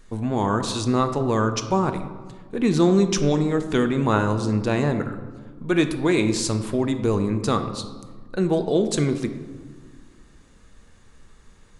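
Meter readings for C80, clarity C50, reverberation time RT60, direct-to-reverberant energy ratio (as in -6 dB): 11.5 dB, 10.0 dB, 1.5 s, 7.5 dB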